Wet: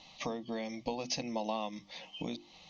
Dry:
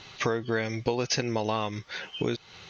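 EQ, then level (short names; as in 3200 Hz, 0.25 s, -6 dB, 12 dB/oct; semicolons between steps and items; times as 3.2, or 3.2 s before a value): air absorption 50 m; notches 50/100/150/200/250/300/350 Hz; fixed phaser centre 400 Hz, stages 6; -4.0 dB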